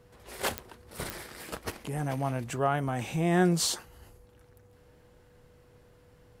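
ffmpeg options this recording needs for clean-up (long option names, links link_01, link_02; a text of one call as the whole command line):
ffmpeg -i in.wav -af "adeclick=threshold=4,bandreject=frequency=490:width=30" out.wav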